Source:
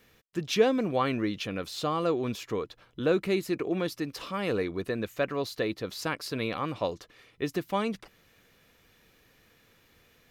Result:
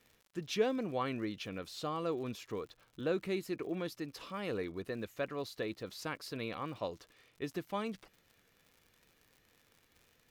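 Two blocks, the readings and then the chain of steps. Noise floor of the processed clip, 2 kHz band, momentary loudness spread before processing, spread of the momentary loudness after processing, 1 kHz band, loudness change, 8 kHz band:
-71 dBFS, -8.5 dB, 9 LU, 9 LU, -8.5 dB, -8.5 dB, -8.5 dB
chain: wow and flutter 28 cents; crackle 96 per s -42 dBFS; trim -8.5 dB

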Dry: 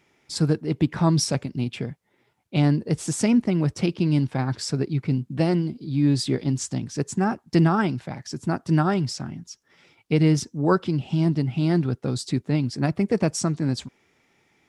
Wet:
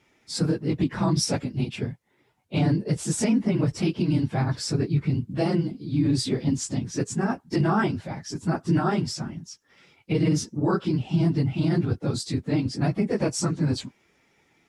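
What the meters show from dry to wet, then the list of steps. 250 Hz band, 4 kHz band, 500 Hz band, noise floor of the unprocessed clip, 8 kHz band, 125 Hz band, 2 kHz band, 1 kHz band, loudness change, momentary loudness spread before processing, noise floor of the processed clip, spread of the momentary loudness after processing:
-2.0 dB, -0.5 dB, -2.0 dB, -67 dBFS, -0.5 dB, -1.5 dB, -1.5 dB, -2.0 dB, -2.0 dB, 9 LU, -66 dBFS, 7 LU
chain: phase randomisation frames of 50 ms; peak limiter -14 dBFS, peak gain reduction 9 dB

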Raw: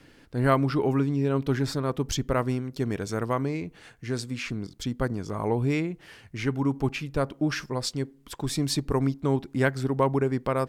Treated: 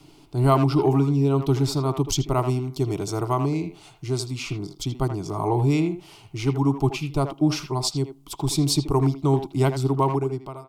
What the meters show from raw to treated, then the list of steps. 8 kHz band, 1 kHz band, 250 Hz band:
+6.0 dB, +4.5 dB, +3.5 dB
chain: fade out at the end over 0.77 s; static phaser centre 340 Hz, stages 8; speakerphone echo 80 ms, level -8 dB; trim +6.5 dB

